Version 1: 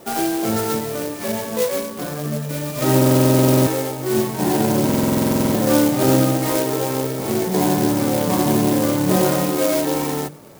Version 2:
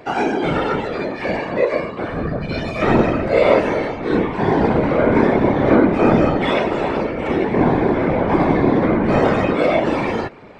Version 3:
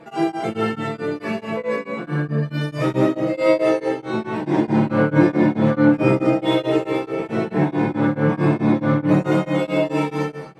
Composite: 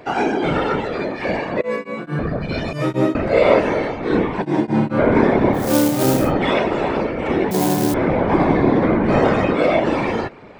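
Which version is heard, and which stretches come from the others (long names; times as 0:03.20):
2
0:01.61–0:02.19: punch in from 3
0:02.73–0:03.15: punch in from 3
0:04.42–0:04.99: punch in from 3
0:05.64–0:06.20: punch in from 1, crossfade 0.24 s
0:07.51–0:07.94: punch in from 1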